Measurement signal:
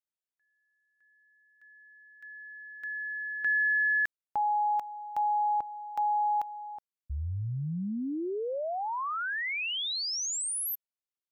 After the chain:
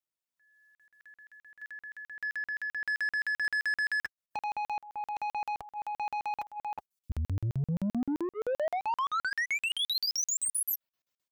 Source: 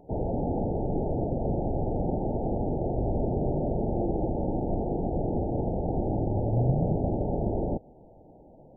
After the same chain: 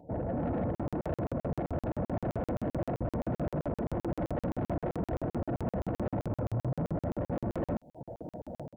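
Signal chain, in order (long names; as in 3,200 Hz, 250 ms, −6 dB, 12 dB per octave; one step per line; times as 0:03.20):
reverb reduction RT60 0.52 s
high-pass filter 51 Hz 12 dB per octave
automatic gain control gain up to 15 dB
brickwall limiter −12.5 dBFS
downward compressor 3 to 1, threshold −26 dBFS
soft clipping −26.5 dBFS
notch comb filter 400 Hz
regular buffer underruns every 0.13 s, samples 2,048, zero, from 0:00.75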